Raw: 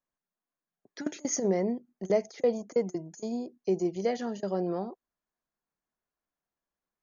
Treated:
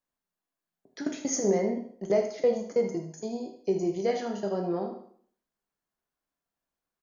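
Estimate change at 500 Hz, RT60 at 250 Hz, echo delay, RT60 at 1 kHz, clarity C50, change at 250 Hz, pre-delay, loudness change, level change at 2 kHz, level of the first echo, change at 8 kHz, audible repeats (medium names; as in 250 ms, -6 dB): +2.0 dB, 0.60 s, 77 ms, 0.55 s, 7.0 dB, +0.5 dB, 5 ms, +1.5 dB, +1.5 dB, -10.5 dB, no reading, 2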